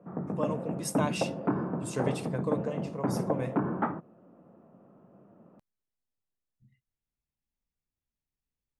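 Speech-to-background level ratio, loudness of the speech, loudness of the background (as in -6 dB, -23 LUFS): -3.0 dB, -36.0 LUFS, -33.0 LUFS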